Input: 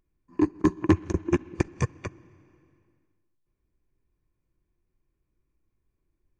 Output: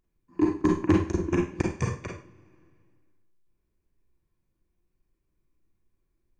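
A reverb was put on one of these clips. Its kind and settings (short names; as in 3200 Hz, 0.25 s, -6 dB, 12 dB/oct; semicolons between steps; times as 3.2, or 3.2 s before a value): Schroeder reverb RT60 0.37 s, combs from 33 ms, DRR -0.5 dB; gain -2.5 dB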